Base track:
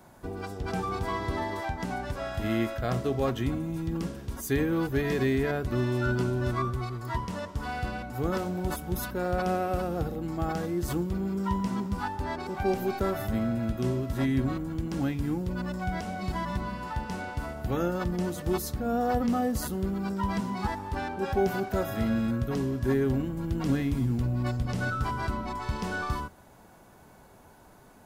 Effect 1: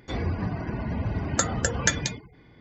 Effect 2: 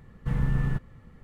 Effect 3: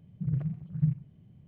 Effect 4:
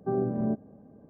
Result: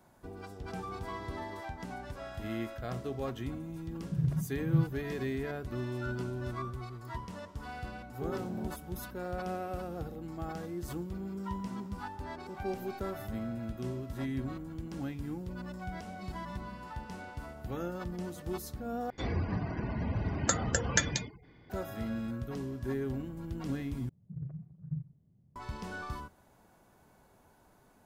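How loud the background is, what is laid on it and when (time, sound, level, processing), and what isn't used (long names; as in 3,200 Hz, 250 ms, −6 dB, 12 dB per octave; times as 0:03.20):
base track −9 dB
0:03.91: mix in 3 −0.5 dB + high-pass filter 61 Hz
0:08.14: mix in 4 −11.5 dB
0:19.10: overwrite with 1 −4.5 dB
0:24.09: overwrite with 3 −11 dB + low-pass filter 1,200 Hz
not used: 2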